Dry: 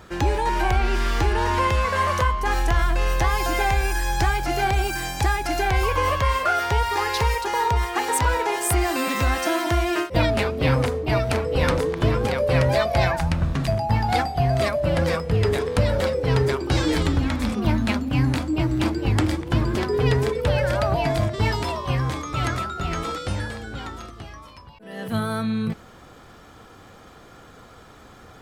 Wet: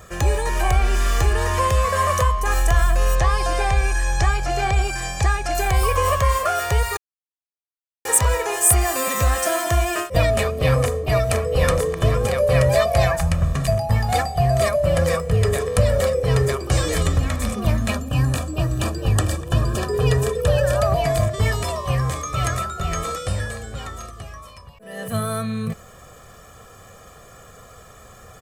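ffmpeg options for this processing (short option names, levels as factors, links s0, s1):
-filter_complex "[0:a]asettb=1/sr,asplit=3[s0][s1][s2];[s0]atrim=end=3.154[s3];[s1]atrim=start=3.15:end=5.55,asetpts=PTS-STARTPTS,afade=t=in:d=0.004:c=qsin,afade=t=out:st=2.396:d=0.004:c=qsin,lowpass=5900[s4];[s2]atrim=start=5.546[s5];[s3][s4]acrossfade=d=0.004:c1=hsin:c2=qsin[s6];[s6][s5]acrossfade=d=0.004:c1=qsin:c2=hsin,asettb=1/sr,asplit=3[s7][s8][s9];[s7]atrim=end=17.904[s10];[s8]atrim=start=17.9:end=20.82,asetpts=PTS-STARTPTS,afade=t=in:d=0.004:c=qsin,afade=t=out:st=2.916:d=0.004:c=qsin,asuperstop=centerf=2100:order=20:qfactor=5.4[s11];[s9]atrim=start=20.816[s12];[s10][s11]acrossfade=d=0.004:c1=hsin:c2=qsin[s13];[s13][s12]acrossfade=d=0.004:c1=qsin:c2=hsin,asplit=3[s14][s15][s16];[s14]atrim=end=6.97,asetpts=PTS-STARTPTS,afade=t=out:st=6.966:d=0.004:c=hsin[s17];[s15]atrim=start=6.97:end=8.05,asetpts=PTS-STARTPTS,volume=0[s18];[s16]atrim=start=8.05,asetpts=PTS-STARTPTS,afade=t=in:d=0.004:c=hsin[s19];[s17][s18][s19]concat=n=3:v=0:a=1,highshelf=f=5900:t=q:w=1.5:g=7.5,aecho=1:1:1.7:0.64"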